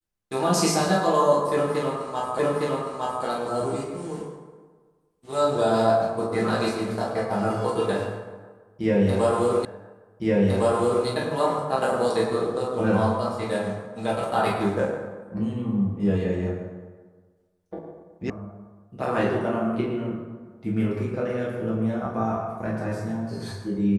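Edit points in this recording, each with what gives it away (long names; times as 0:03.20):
0:02.39: the same again, the last 0.86 s
0:09.65: the same again, the last 1.41 s
0:18.30: cut off before it has died away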